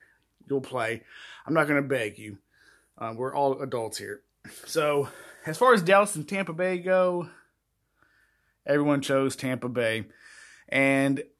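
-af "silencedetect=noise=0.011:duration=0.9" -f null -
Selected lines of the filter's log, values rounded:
silence_start: 7.28
silence_end: 8.67 | silence_duration: 1.39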